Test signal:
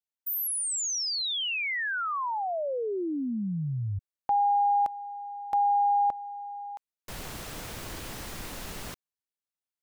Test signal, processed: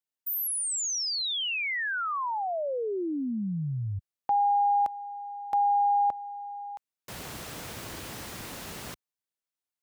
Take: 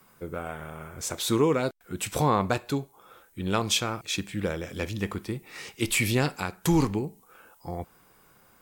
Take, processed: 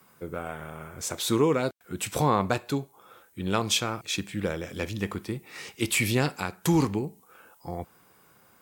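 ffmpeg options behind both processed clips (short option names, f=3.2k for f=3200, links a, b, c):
-af "highpass=72"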